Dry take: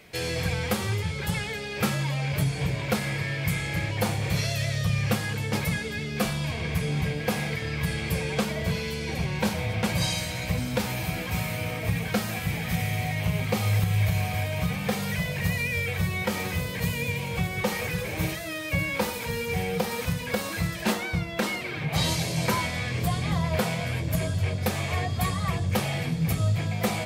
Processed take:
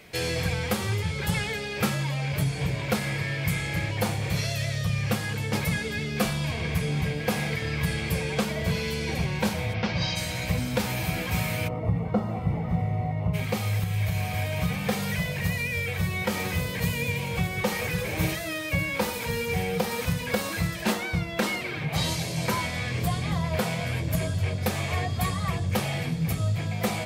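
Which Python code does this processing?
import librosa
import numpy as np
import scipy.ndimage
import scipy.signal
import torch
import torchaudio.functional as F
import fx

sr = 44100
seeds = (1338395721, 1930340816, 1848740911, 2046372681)

y = fx.cheby1_lowpass(x, sr, hz=5500.0, order=4, at=(9.73, 10.15), fade=0.02)
y = fx.savgol(y, sr, points=65, at=(11.67, 13.33), fade=0.02)
y = fx.rider(y, sr, range_db=10, speed_s=0.5)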